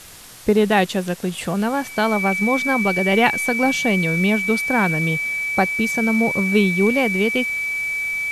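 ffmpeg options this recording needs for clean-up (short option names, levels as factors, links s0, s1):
-af "adeclick=t=4,bandreject=f=2300:w=30,afwtdn=0.01"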